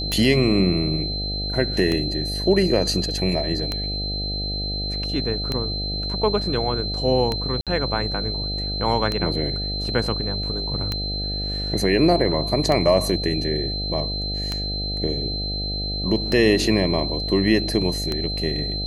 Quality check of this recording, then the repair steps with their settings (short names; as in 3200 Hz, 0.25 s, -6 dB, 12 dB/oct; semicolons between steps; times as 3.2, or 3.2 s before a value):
buzz 50 Hz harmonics 15 -29 dBFS
tick 33 1/3 rpm -10 dBFS
tone 4100 Hz -27 dBFS
7.61–7.67 gap 57 ms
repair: de-click; de-hum 50 Hz, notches 15; notch 4100 Hz, Q 30; interpolate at 7.61, 57 ms